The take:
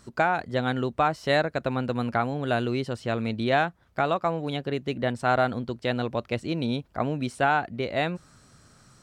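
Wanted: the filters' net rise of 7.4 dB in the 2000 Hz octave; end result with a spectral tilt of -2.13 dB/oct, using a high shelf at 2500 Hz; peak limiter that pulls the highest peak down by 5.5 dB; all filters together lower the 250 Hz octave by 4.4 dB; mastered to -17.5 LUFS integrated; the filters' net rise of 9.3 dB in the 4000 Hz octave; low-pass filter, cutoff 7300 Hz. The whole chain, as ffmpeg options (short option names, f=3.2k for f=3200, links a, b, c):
-af "lowpass=7.3k,equalizer=f=250:t=o:g=-5.5,equalizer=f=2k:t=o:g=7.5,highshelf=f=2.5k:g=3.5,equalizer=f=4k:t=o:g=6,volume=8.5dB,alimiter=limit=-1.5dB:level=0:latency=1"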